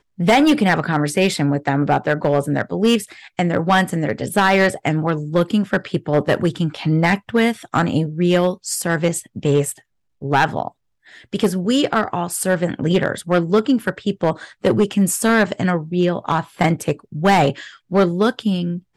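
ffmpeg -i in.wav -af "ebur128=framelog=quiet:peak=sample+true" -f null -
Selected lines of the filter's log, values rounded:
Integrated loudness:
  I:         -18.6 LUFS
  Threshold: -28.8 LUFS
Loudness range:
  LRA:         2.6 LU
  Threshold: -39.1 LUFS
  LRA low:   -20.8 LUFS
  LRA high:  -18.2 LUFS
Sample peak:
  Peak:       -8.6 dBFS
True peak:
  Peak:       -8.3 dBFS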